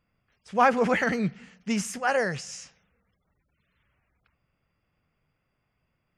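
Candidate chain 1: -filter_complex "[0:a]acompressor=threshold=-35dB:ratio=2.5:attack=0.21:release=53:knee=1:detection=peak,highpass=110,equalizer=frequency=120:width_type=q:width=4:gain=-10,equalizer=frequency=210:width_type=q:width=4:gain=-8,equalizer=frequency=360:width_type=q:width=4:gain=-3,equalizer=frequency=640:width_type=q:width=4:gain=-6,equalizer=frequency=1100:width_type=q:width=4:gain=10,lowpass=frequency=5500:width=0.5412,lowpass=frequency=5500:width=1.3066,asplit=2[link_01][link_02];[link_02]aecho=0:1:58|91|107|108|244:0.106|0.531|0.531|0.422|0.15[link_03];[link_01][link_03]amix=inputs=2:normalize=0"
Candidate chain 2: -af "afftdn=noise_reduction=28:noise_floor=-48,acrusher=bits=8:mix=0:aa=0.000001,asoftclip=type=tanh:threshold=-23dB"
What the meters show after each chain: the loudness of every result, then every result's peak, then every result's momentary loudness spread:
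−35.0, −30.0 LKFS; −18.5, −23.0 dBFS; 13, 12 LU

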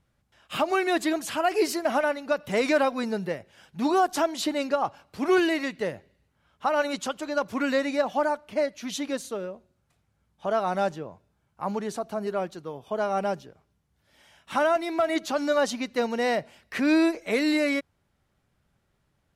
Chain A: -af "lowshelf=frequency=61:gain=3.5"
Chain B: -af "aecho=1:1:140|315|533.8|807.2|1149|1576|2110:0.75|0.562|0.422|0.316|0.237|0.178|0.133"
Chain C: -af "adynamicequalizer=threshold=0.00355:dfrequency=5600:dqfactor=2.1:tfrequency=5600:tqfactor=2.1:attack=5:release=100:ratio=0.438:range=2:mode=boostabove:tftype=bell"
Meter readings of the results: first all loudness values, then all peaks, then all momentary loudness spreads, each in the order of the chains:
−27.0, −24.0, −26.5 LKFS; −13.5, −9.0, −13.5 dBFS; 11, 12, 11 LU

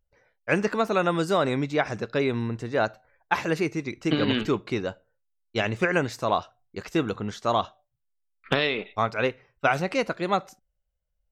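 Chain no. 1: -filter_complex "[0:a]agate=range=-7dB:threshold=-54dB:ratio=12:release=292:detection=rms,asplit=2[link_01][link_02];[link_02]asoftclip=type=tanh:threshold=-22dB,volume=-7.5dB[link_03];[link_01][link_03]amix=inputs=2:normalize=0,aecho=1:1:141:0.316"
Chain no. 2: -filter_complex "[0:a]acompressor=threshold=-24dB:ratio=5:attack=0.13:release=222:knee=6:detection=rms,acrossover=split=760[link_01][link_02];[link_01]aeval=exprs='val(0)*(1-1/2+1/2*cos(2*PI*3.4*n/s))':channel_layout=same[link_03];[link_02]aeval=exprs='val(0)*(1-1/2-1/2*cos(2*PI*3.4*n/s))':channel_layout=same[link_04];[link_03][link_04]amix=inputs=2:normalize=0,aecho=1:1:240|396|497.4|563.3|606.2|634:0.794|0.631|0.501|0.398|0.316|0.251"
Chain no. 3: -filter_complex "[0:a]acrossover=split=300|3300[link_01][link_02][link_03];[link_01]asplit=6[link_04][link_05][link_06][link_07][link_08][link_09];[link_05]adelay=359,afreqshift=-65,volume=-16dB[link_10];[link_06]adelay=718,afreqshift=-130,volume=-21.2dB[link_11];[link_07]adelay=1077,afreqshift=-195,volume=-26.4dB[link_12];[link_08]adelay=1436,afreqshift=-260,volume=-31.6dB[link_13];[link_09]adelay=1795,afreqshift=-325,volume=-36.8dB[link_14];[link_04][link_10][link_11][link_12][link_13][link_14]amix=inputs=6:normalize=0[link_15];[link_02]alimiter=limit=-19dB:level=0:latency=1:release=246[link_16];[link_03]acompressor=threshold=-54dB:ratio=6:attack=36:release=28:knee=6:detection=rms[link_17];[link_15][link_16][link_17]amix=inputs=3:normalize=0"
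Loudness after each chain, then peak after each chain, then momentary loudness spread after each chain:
−24.0, −35.5, −29.5 LKFS; −5.5, −19.5, −12.5 dBFS; 9, 7, 8 LU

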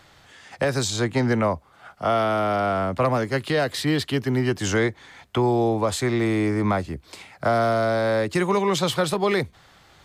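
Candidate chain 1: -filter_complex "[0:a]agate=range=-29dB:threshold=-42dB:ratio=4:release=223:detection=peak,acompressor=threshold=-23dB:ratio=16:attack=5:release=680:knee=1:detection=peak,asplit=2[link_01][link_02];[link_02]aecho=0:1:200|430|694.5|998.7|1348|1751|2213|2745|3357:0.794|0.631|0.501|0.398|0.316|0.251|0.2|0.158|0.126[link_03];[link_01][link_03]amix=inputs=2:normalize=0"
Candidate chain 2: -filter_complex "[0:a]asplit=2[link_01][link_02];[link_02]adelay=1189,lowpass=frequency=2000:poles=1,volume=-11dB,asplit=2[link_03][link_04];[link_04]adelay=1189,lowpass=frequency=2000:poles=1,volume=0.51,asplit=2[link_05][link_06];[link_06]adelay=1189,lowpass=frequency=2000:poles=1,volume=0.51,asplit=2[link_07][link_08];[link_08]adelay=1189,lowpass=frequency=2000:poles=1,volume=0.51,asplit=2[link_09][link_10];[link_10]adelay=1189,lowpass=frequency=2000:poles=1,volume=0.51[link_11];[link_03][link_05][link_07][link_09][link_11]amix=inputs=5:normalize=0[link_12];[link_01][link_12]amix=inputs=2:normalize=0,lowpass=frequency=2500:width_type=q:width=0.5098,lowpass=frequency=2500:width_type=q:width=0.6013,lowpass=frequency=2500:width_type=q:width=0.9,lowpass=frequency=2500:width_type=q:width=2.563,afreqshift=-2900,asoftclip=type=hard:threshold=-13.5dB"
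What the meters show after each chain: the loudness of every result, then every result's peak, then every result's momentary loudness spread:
−26.5, −20.0 LKFS; −12.5, −13.5 dBFS; 3, 8 LU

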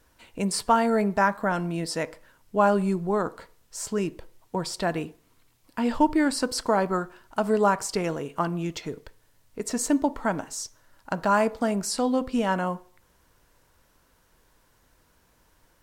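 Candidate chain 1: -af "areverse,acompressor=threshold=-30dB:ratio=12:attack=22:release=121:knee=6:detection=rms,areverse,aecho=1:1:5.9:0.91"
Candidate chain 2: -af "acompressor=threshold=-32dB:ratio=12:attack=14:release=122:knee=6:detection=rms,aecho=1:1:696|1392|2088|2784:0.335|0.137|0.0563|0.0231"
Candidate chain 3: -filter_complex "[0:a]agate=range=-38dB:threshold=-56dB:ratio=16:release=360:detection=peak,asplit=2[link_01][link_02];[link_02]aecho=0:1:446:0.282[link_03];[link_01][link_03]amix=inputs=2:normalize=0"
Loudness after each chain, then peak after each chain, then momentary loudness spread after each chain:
−31.5, −37.0, −26.0 LKFS; −15.5, −19.0, −7.5 dBFS; 9, 10, 16 LU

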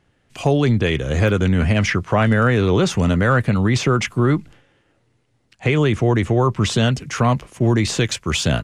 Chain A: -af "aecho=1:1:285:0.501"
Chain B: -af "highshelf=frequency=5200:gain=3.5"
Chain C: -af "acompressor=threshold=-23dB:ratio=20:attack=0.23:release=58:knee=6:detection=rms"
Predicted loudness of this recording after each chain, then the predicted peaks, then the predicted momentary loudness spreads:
−17.5, −18.0, −30.0 LKFS; −3.0, −5.5, −20.5 dBFS; 4, 4, 4 LU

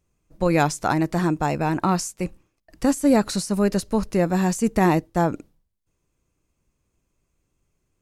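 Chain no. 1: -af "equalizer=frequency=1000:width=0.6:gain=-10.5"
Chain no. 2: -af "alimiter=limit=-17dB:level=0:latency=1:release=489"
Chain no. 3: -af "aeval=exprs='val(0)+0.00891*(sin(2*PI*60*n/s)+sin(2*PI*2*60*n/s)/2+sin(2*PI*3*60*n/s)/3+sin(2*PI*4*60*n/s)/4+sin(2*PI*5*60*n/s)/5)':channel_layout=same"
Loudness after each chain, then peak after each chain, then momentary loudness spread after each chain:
−25.5, −29.5, −22.5 LKFS; −10.0, −17.0, −6.0 dBFS; 7, 5, 6 LU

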